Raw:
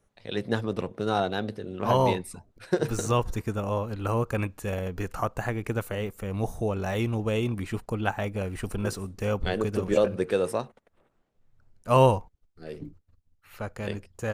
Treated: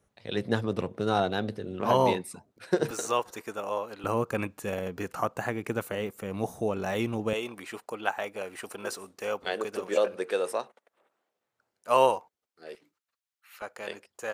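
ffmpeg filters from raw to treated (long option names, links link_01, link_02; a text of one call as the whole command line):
ffmpeg -i in.wav -af "asetnsamples=nb_out_samples=441:pad=0,asendcmd='1.81 highpass f 170;2.91 highpass f 460;4.04 highpass f 170;7.33 highpass f 480;12.75 highpass f 1300;13.62 highpass f 520',highpass=54" out.wav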